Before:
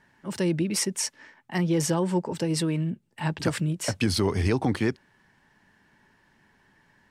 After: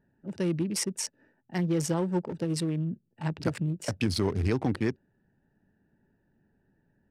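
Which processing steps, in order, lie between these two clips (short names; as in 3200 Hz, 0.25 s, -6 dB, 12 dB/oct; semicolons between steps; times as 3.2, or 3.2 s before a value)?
Wiener smoothing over 41 samples; gain -2.5 dB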